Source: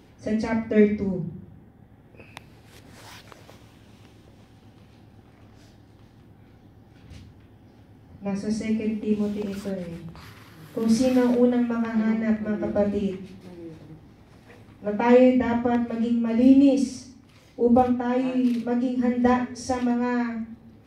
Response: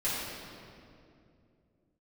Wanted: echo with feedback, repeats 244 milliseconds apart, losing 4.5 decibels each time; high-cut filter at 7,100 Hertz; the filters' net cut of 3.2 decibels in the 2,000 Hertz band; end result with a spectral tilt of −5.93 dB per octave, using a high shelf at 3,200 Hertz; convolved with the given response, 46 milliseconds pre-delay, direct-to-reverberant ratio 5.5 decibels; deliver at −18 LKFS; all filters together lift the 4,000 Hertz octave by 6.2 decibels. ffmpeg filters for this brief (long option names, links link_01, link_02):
-filter_complex "[0:a]lowpass=7100,equalizer=frequency=2000:width_type=o:gain=-7.5,highshelf=frequency=3200:gain=5.5,equalizer=frequency=4000:width_type=o:gain=7,aecho=1:1:244|488|732|976|1220|1464|1708|1952|2196:0.596|0.357|0.214|0.129|0.0772|0.0463|0.0278|0.0167|0.01,asplit=2[link_01][link_02];[1:a]atrim=start_sample=2205,adelay=46[link_03];[link_02][link_03]afir=irnorm=-1:irlink=0,volume=-14dB[link_04];[link_01][link_04]amix=inputs=2:normalize=0,volume=3dB"